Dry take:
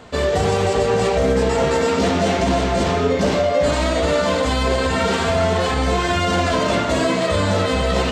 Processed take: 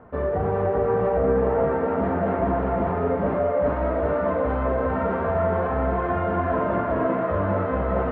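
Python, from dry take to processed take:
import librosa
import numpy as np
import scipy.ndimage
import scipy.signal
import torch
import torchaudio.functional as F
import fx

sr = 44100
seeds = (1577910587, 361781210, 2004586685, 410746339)

y = scipy.signal.sosfilt(scipy.signal.butter(4, 1500.0, 'lowpass', fs=sr, output='sos'), x)
y = fx.echo_thinned(y, sr, ms=397, feedback_pct=77, hz=440.0, wet_db=-5)
y = y * librosa.db_to_amplitude(-5.5)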